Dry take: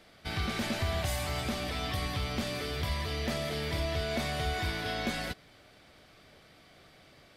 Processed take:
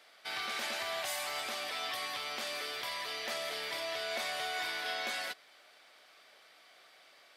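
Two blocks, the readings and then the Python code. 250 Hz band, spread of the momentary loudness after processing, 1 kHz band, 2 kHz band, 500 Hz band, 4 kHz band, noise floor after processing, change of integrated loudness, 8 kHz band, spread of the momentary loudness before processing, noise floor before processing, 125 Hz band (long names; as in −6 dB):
−18.0 dB, 2 LU, −1.5 dB, 0.0 dB, −5.5 dB, 0.0 dB, −61 dBFS, −3.0 dB, 0.0 dB, 2 LU, −59 dBFS, −31.5 dB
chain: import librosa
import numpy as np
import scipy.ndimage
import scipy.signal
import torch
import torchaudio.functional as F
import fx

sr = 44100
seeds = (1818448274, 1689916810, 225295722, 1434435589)

y = scipy.signal.sosfilt(scipy.signal.butter(2, 710.0, 'highpass', fs=sr, output='sos'), x)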